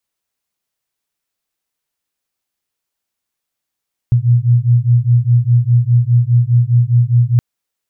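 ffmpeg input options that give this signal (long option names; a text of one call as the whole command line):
ffmpeg -f lavfi -i "aevalsrc='0.266*(sin(2*PI*118*t)+sin(2*PI*122.9*t))':duration=3.27:sample_rate=44100" out.wav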